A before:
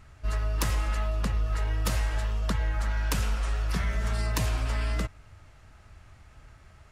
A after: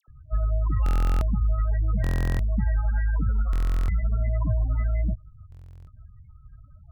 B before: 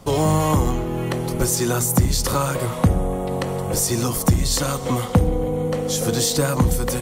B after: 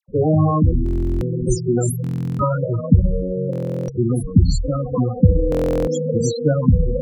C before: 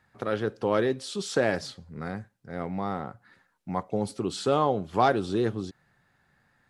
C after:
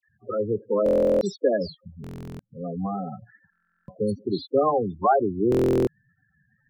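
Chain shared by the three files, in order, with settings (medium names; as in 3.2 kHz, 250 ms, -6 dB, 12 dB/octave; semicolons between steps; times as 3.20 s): loudest bins only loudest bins 8; phase dispersion lows, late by 81 ms, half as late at 1.4 kHz; buffer glitch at 0.84/2.02/3.51/5.50 s, samples 1024, times 15; trim +4.5 dB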